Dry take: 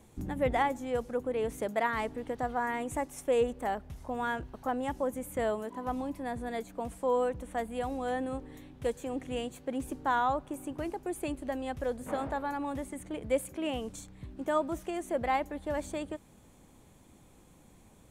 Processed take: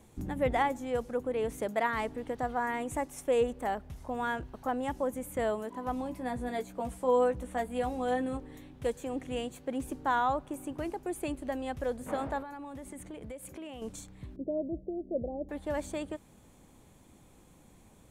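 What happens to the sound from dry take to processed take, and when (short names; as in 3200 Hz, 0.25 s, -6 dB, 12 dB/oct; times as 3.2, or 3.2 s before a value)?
6.04–8.37 doubler 16 ms -6 dB
12.42–13.82 compressor 12:1, threshold -39 dBFS
14.36–15.49 steep low-pass 610 Hz 48 dB/oct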